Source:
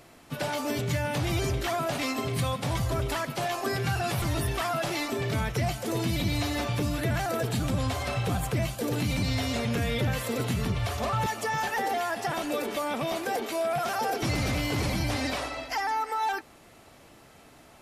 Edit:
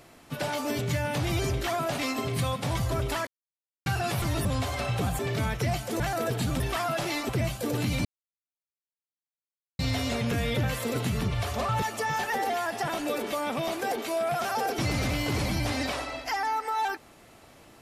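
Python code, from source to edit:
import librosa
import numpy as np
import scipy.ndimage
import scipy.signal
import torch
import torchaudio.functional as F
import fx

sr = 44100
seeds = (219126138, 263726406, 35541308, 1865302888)

y = fx.edit(x, sr, fx.silence(start_s=3.27, length_s=0.59),
    fx.swap(start_s=4.45, length_s=0.69, other_s=7.73, other_length_s=0.74),
    fx.cut(start_s=5.95, length_s=1.18),
    fx.insert_silence(at_s=9.23, length_s=1.74), tone=tone)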